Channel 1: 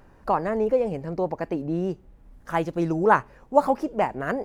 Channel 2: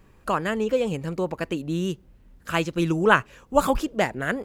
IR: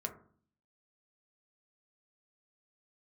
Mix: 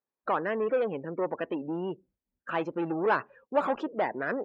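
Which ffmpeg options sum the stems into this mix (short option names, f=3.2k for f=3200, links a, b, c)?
-filter_complex "[0:a]lowpass=1.8k,volume=-11dB[a];[1:a]agate=range=-33dB:threshold=-46dB:ratio=3:detection=peak,aeval=exprs='(tanh(28.2*val(0)+0.25)-tanh(0.25))/28.2':c=same,volume=2dB[b];[a][b]amix=inputs=2:normalize=0,afftdn=nr=28:nf=-39,highpass=330,lowpass=2.6k"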